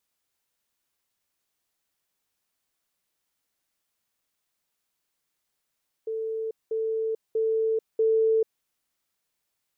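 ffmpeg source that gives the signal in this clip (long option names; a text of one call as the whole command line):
ffmpeg -f lavfi -i "aevalsrc='pow(10,(-27.5+3*floor(t/0.64))/20)*sin(2*PI*444*t)*clip(min(mod(t,0.64),0.44-mod(t,0.64))/0.005,0,1)':duration=2.56:sample_rate=44100" out.wav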